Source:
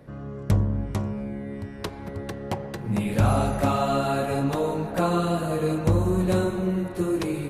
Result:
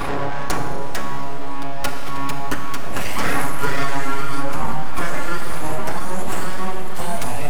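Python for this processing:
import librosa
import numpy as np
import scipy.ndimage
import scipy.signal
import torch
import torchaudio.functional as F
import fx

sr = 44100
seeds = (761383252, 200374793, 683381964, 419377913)

y = fx.spec_ripple(x, sr, per_octave=1.7, drift_hz=1.8, depth_db=19)
y = scipy.signal.sosfilt(scipy.signal.butter(2, 320.0, 'highpass', fs=sr, output='sos'), y)
y = fx.notch(y, sr, hz=1500.0, q=6.8)
y = y + 0.81 * np.pad(y, (int(7.0 * sr / 1000.0), 0))[:len(y)]
y = np.abs(y)
y = fx.dynamic_eq(y, sr, hz=3700.0, q=1.7, threshold_db=-43.0, ratio=4.0, max_db=-5)
y = fx.rev_schroeder(y, sr, rt60_s=2.3, comb_ms=27, drr_db=7.5)
y = fx.env_flatten(y, sr, amount_pct=70)
y = y * 10.0 ** (-2.0 / 20.0)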